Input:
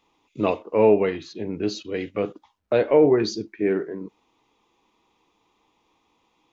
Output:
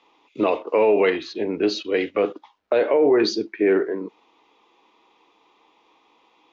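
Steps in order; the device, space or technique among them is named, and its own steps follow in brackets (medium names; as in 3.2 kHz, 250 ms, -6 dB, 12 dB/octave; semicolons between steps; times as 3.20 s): DJ mixer with the lows and highs turned down (three-band isolator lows -19 dB, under 270 Hz, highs -23 dB, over 5.4 kHz; peak limiter -18.5 dBFS, peak gain reduction 11.5 dB); 0.67–1.10 s: treble shelf 2.3 kHz +9 dB; trim +8.5 dB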